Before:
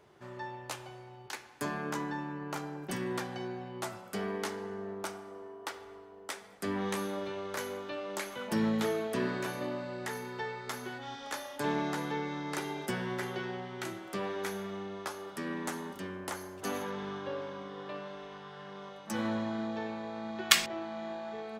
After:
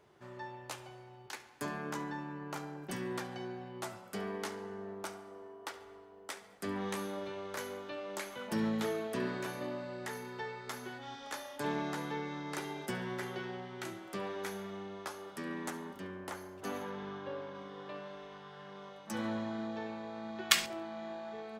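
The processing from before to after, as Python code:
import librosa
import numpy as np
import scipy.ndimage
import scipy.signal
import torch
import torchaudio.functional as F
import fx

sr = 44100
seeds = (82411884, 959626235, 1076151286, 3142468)

y = fx.peak_eq(x, sr, hz=8900.0, db=-5.5, octaves=2.2, at=(15.7, 17.55))
y = fx.echo_thinned(y, sr, ms=70, feedback_pct=32, hz=420.0, wet_db=-19.5)
y = y * librosa.db_to_amplitude(-3.5)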